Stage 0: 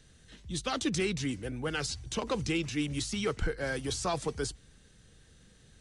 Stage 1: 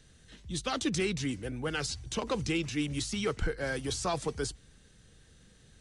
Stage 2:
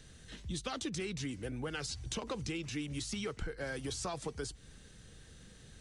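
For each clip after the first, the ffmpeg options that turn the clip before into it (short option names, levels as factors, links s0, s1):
-af anull
-af "acompressor=threshold=0.01:ratio=6,volume=1.5"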